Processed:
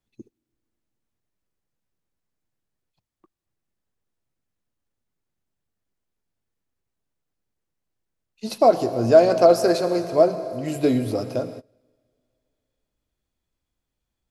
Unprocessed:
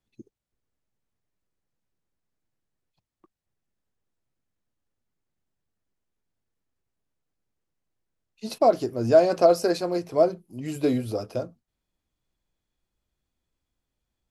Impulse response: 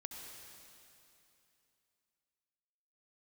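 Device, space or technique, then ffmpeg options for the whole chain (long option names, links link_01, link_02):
keyed gated reverb: -filter_complex "[0:a]asplit=3[link_01][link_02][link_03];[1:a]atrim=start_sample=2205[link_04];[link_02][link_04]afir=irnorm=-1:irlink=0[link_05];[link_03]apad=whole_len=630776[link_06];[link_05][link_06]sidechaingate=range=-24dB:threshold=-48dB:ratio=16:detection=peak,volume=-0.5dB[link_07];[link_01][link_07]amix=inputs=2:normalize=0"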